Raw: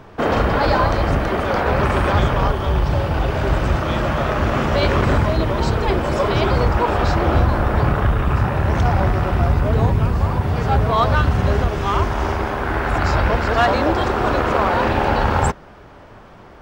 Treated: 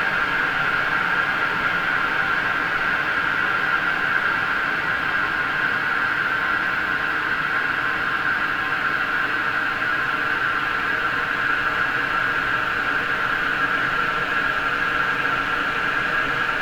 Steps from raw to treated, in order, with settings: comb filter that takes the minimum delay 6.7 ms; ring modulator 1.5 kHz; Paulstretch 50×, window 0.50 s, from 8.04 s

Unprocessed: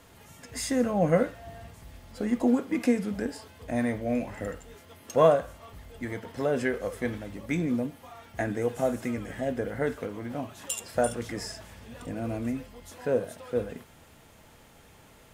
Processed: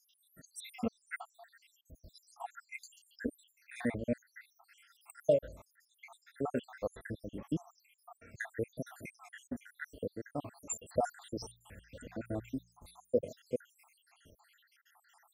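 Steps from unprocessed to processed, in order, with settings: random holes in the spectrogram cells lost 83%; 11.03–13.21 s: de-hum 58.45 Hz, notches 3; trim -2.5 dB

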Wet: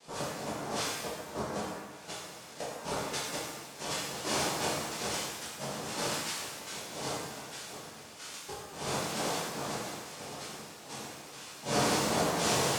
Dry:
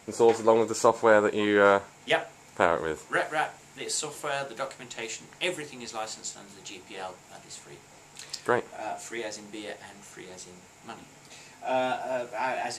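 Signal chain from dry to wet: compression 10:1, threshold -26 dBFS, peak gain reduction 12.5 dB; inverted gate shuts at -19 dBFS, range -29 dB; noise-vocoded speech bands 2; pitch-shifted reverb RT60 1.1 s, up +7 st, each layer -8 dB, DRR -10.5 dB; trim -8.5 dB

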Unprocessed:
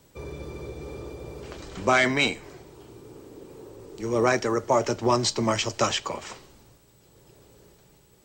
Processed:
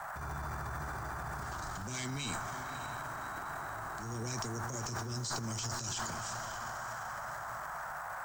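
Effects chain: FFT filter 140 Hz 0 dB, 950 Hz -29 dB, 6.5 kHz +2 dB; band noise 640–1600 Hz -43 dBFS; reverse; compression, threshold -36 dBFS, peak gain reduction 13 dB; reverse; bit crusher 10-bit; on a send: echo that smears into a reverb 581 ms, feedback 43%, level -10.5 dB; on the sum: transient shaper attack -10 dB, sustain +9 dB; trim +1 dB

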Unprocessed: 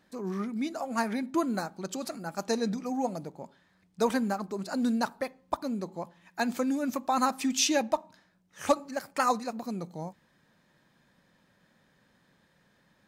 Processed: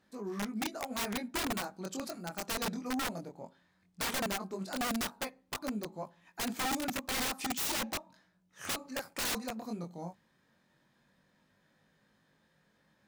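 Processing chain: Chebyshev shaper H 5 -27 dB, 7 -25 dB, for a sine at -12 dBFS; chorus 0.16 Hz, delay 19 ms, depth 4.4 ms; integer overflow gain 28.5 dB

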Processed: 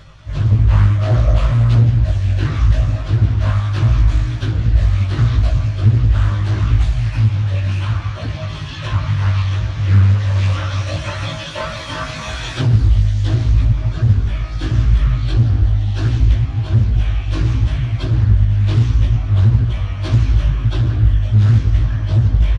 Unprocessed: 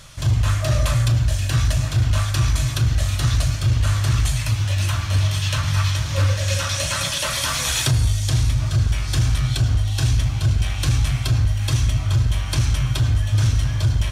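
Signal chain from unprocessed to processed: spectral replace 6.12–6.61 s, 500–1200 Hz both; de-hum 193.6 Hz, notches 7; dynamic bell 330 Hz, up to +5 dB, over -42 dBFS, Q 2.2; plain phase-vocoder stretch 1.6×; tape spacing loss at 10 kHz 27 dB; doubling 19 ms -4 dB; loudspeaker Doppler distortion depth 0.51 ms; trim +5 dB

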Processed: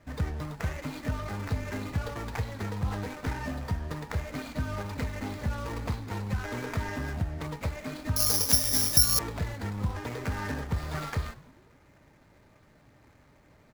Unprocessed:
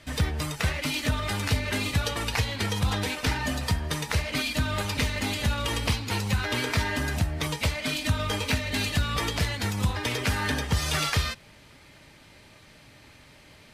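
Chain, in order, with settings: median filter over 15 samples; frequency-shifting echo 99 ms, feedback 57%, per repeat -110 Hz, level -19.5 dB; 8.16–9.19 s: careless resampling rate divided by 8×, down none, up zero stuff; trim -4.5 dB

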